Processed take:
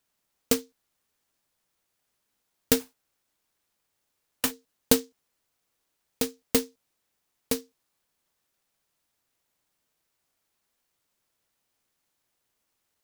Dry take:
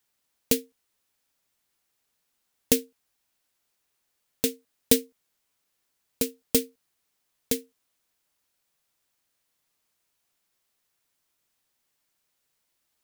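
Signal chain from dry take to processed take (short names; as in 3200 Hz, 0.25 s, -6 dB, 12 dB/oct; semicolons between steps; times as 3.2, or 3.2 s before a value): 2.79–4.5 spectral whitening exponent 0.1; noise-modulated delay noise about 5100 Hz, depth 0.11 ms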